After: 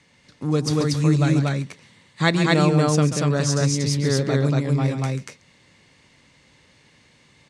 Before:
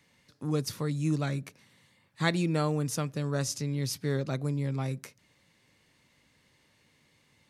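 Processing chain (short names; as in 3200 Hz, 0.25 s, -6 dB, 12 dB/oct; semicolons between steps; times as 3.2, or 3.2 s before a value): LPF 8700 Hz 24 dB/oct; on a send: loudspeakers at several distances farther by 47 m -10 dB, 81 m -1 dB; on the sum: gain +8 dB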